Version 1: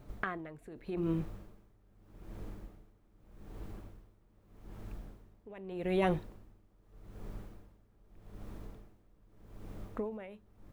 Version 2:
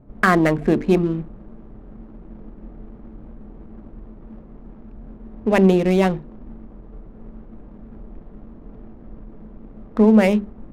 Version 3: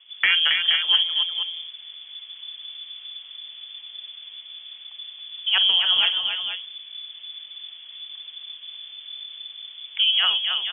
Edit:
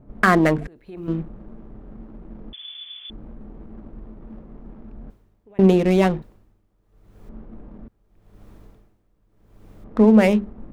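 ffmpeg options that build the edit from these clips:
-filter_complex "[0:a]asplit=4[a][b][c][d];[1:a]asplit=6[e][f][g][h][i][j];[e]atrim=end=0.672[k];[a]atrim=start=0.668:end=1.082[l];[f]atrim=start=1.078:end=2.532[m];[2:a]atrim=start=2.528:end=3.102[n];[g]atrim=start=3.098:end=5.102[o];[b]atrim=start=5.098:end=5.592[p];[h]atrim=start=5.588:end=6.222[q];[c]atrim=start=6.218:end=7.292[r];[i]atrim=start=7.288:end=7.882[s];[d]atrim=start=7.878:end=9.842[t];[j]atrim=start=9.838[u];[k][l]acrossfade=d=0.004:c1=hsin:c2=hsin[v];[v][m]acrossfade=d=0.004:c1=hsin:c2=hsin[w];[w][n]acrossfade=d=0.004:c1=hsin:c2=hsin[x];[x][o]acrossfade=d=0.004:c1=hsin:c2=hsin[y];[y][p]acrossfade=d=0.004:c1=hsin:c2=hsin[z];[z][q]acrossfade=d=0.004:c1=hsin:c2=hsin[aa];[aa][r]acrossfade=d=0.004:c1=hsin:c2=hsin[ab];[ab][s]acrossfade=d=0.004:c1=hsin:c2=hsin[ac];[ac][t]acrossfade=d=0.004:c1=hsin:c2=hsin[ad];[ad][u]acrossfade=d=0.004:c1=hsin:c2=hsin"

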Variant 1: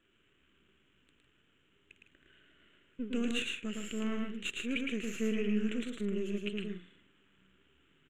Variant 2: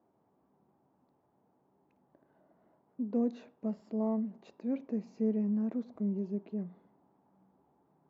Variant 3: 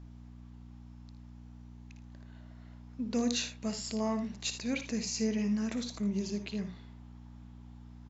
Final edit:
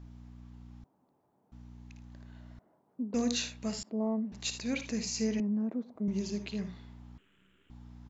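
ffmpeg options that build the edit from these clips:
-filter_complex "[1:a]asplit=4[a][b][c][d];[2:a]asplit=6[e][f][g][h][i][j];[e]atrim=end=0.842[k];[a]atrim=start=0.838:end=1.522[l];[f]atrim=start=1.518:end=2.592[m];[b]atrim=start=2.588:end=3.142[n];[g]atrim=start=3.138:end=3.832[o];[c]atrim=start=3.828:end=4.322[p];[h]atrim=start=4.318:end=5.402[q];[d]atrim=start=5.398:end=6.082[r];[i]atrim=start=6.078:end=7.182[s];[0:a]atrim=start=7.178:end=7.702[t];[j]atrim=start=7.698[u];[k][l]acrossfade=d=0.004:c1=hsin:c2=hsin[v];[v][m]acrossfade=d=0.004:c1=hsin:c2=hsin[w];[w][n]acrossfade=d=0.004:c1=hsin:c2=hsin[x];[x][o]acrossfade=d=0.004:c1=hsin:c2=hsin[y];[y][p]acrossfade=d=0.004:c1=hsin:c2=hsin[z];[z][q]acrossfade=d=0.004:c1=hsin:c2=hsin[aa];[aa][r]acrossfade=d=0.004:c1=hsin:c2=hsin[ab];[ab][s]acrossfade=d=0.004:c1=hsin:c2=hsin[ac];[ac][t]acrossfade=d=0.004:c1=hsin:c2=hsin[ad];[ad][u]acrossfade=d=0.004:c1=hsin:c2=hsin"

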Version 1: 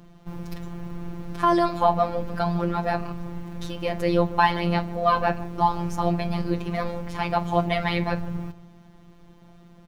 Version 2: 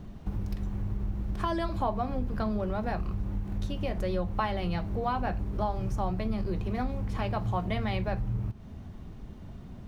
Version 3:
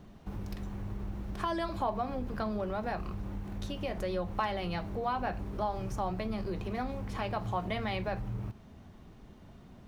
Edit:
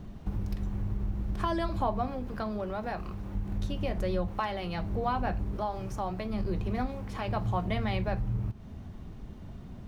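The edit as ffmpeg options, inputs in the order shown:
-filter_complex "[2:a]asplit=4[a][b][c][d];[1:a]asplit=5[e][f][g][h][i];[e]atrim=end=2.082[j];[a]atrim=start=2.078:end=3.352[k];[f]atrim=start=3.348:end=4.282[l];[b]atrim=start=4.278:end=4.782[m];[g]atrim=start=4.778:end=5.562[n];[c]atrim=start=5.558:end=6.332[o];[h]atrim=start=6.328:end=6.862[p];[d]atrim=start=6.858:end=7.282[q];[i]atrim=start=7.278[r];[j][k]acrossfade=d=0.004:c1=hsin:c2=hsin[s];[s][l]acrossfade=d=0.004:c1=hsin:c2=hsin[t];[t][m]acrossfade=d=0.004:c1=hsin:c2=hsin[u];[u][n]acrossfade=d=0.004:c1=hsin:c2=hsin[v];[v][o]acrossfade=d=0.004:c1=hsin:c2=hsin[w];[w][p]acrossfade=d=0.004:c1=hsin:c2=hsin[x];[x][q]acrossfade=d=0.004:c1=hsin:c2=hsin[y];[y][r]acrossfade=d=0.004:c1=hsin:c2=hsin"

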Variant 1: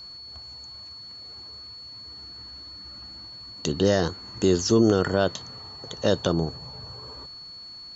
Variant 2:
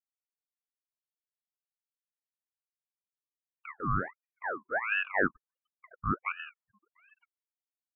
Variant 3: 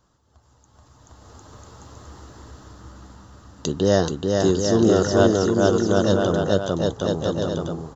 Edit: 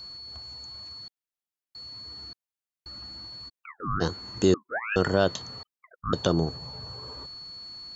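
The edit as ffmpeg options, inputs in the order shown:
-filter_complex "[1:a]asplit=5[a][b][c][d][e];[0:a]asplit=6[f][g][h][i][j][k];[f]atrim=end=1.082[l];[a]atrim=start=1.078:end=1.752[m];[g]atrim=start=1.748:end=2.332[n];[b]atrim=start=2.328:end=2.862[o];[h]atrim=start=2.858:end=3.5[p];[c]atrim=start=3.48:end=4.02[q];[i]atrim=start=4:end=4.542[r];[d]atrim=start=4.538:end=4.962[s];[j]atrim=start=4.958:end=5.632[t];[e]atrim=start=5.628:end=6.132[u];[k]atrim=start=6.128[v];[l][m]acrossfade=d=0.004:c1=hsin:c2=hsin[w];[w][n]acrossfade=d=0.004:c1=hsin:c2=hsin[x];[x][o]acrossfade=d=0.004:c1=hsin:c2=hsin[y];[y][p]acrossfade=d=0.004:c1=hsin:c2=hsin[z];[z][q]acrossfade=d=0.02:c1=tri:c2=tri[aa];[aa][r]acrossfade=d=0.02:c1=tri:c2=tri[ab];[ab][s]acrossfade=d=0.004:c1=hsin:c2=hsin[ac];[ac][t]acrossfade=d=0.004:c1=hsin:c2=hsin[ad];[ad][u]acrossfade=d=0.004:c1=hsin:c2=hsin[ae];[ae][v]acrossfade=d=0.004:c1=hsin:c2=hsin"

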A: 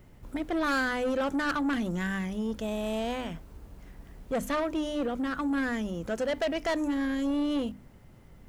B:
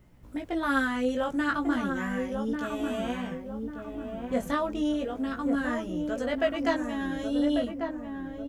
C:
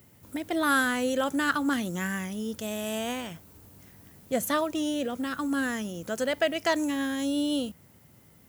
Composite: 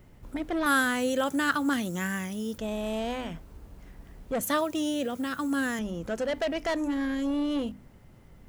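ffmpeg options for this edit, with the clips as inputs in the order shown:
-filter_complex "[2:a]asplit=2[a][b];[0:a]asplit=3[c][d][e];[c]atrim=end=0.662[f];[a]atrim=start=0.658:end=2.582[g];[d]atrim=start=2.578:end=4.412[h];[b]atrim=start=4.408:end=5.792[i];[e]atrim=start=5.788[j];[f][g]acrossfade=d=0.004:c1=hsin:c2=hsin[k];[k][h]acrossfade=d=0.004:c1=hsin:c2=hsin[l];[l][i]acrossfade=d=0.004:c1=hsin:c2=hsin[m];[m][j]acrossfade=d=0.004:c1=hsin:c2=hsin"

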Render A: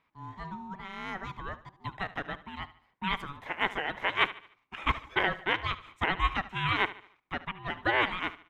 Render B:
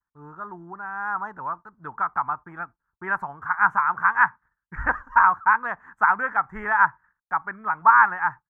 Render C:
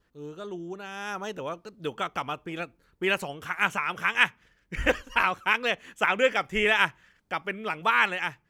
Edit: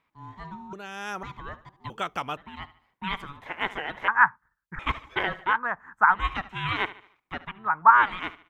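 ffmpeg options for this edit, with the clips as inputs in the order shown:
-filter_complex "[2:a]asplit=2[a][b];[1:a]asplit=3[c][d][e];[0:a]asplit=6[f][g][h][i][j][k];[f]atrim=end=0.732[l];[a]atrim=start=0.728:end=1.232[m];[g]atrim=start=1.228:end=1.902[n];[b]atrim=start=1.898:end=2.372[o];[h]atrim=start=2.368:end=4.082[p];[c]atrim=start=4.078:end=4.792[q];[i]atrim=start=4.788:end=5.59[r];[d]atrim=start=5.43:end=6.25[s];[j]atrim=start=6.09:end=7.7[t];[e]atrim=start=7.46:end=8.14[u];[k]atrim=start=7.9[v];[l][m]acrossfade=d=0.004:c1=hsin:c2=hsin[w];[w][n]acrossfade=d=0.004:c1=hsin:c2=hsin[x];[x][o]acrossfade=d=0.004:c1=hsin:c2=hsin[y];[y][p]acrossfade=d=0.004:c1=hsin:c2=hsin[z];[z][q]acrossfade=d=0.004:c1=hsin:c2=hsin[aa];[aa][r]acrossfade=d=0.004:c1=hsin:c2=hsin[ab];[ab][s]acrossfade=d=0.16:c1=tri:c2=tri[ac];[ac][t]acrossfade=d=0.16:c1=tri:c2=tri[ad];[ad][u]acrossfade=d=0.24:c1=tri:c2=tri[ae];[ae][v]acrossfade=d=0.24:c1=tri:c2=tri"

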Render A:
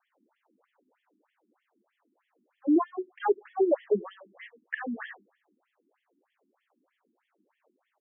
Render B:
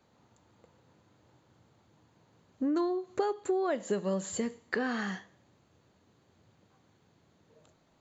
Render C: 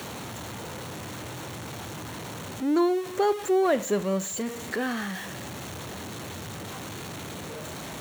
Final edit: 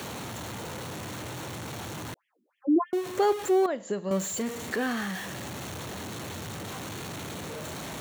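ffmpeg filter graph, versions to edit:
-filter_complex "[2:a]asplit=3[a][b][c];[a]atrim=end=2.142[d];[0:a]atrim=start=2.138:end=2.932[e];[b]atrim=start=2.928:end=3.662[f];[1:a]atrim=start=3.658:end=4.112[g];[c]atrim=start=4.108[h];[d][e]acrossfade=d=0.004:c1=hsin:c2=hsin[i];[i][f]acrossfade=d=0.004:c1=hsin:c2=hsin[j];[j][g]acrossfade=d=0.004:c1=hsin:c2=hsin[k];[k][h]acrossfade=d=0.004:c1=hsin:c2=hsin"

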